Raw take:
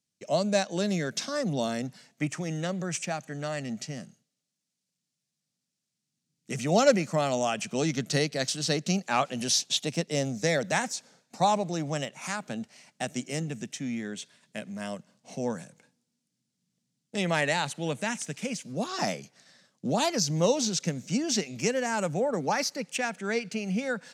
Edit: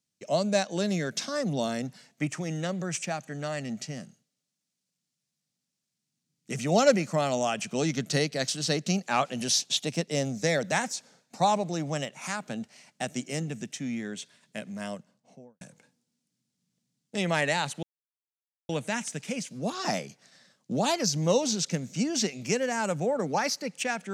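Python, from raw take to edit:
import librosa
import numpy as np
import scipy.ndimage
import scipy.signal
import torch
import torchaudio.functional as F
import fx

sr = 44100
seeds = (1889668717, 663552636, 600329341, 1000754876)

y = fx.studio_fade_out(x, sr, start_s=14.82, length_s=0.79)
y = fx.edit(y, sr, fx.insert_silence(at_s=17.83, length_s=0.86), tone=tone)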